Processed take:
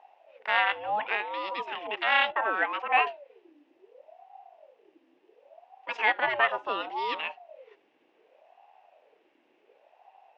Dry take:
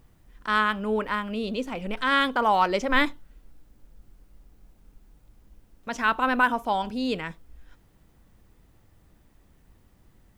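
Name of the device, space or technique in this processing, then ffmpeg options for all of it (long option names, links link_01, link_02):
voice changer toy: -filter_complex "[0:a]aeval=exprs='val(0)*sin(2*PI*530*n/s+530*0.45/0.69*sin(2*PI*0.69*n/s))':channel_layout=same,highpass=530,equalizer=frequency=830:width_type=q:width=4:gain=5,equalizer=frequency=1300:width_type=q:width=4:gain=-5,equalizer=frequency=1900:width_type=q:width=4:gain=3,equalizer=frequency=2700:width_type=q:width=4:gain=10,equalizer=frequency=4300:width_type=q:width=4:gain=-6,lowpass=frequency=4500:width=0.5412,lowpass=frequency=4500:width=1.3066,asettb=1/sr,asplit=3[link_01][link_02][link_03];[link_01]atrim=end=2.324[link_04];[link_02]atrim=start=2.32:end=3.07,asetpts=PTS-STARTPTS,afade=type=in:duration=0.004:curve=qsin,afade=type=out:start_time=0.746:duration=0.004:curve=qsin,acrossover=split=320 2500:gain=0.112 1 0.0794[link_05][link_06][link_07];[link_05][link_06][link_07]amix=inputs=3:normalize=0[link_08];[link_03]atrim=start=3.066[link_09];[link_04][link_08]acrossfade=duration=0.004:curve1=hsin:curve2=qsin[link_10];[link_10][link_09]acrossfade=duration=0.004:curve1=qsin:curve2=hsin"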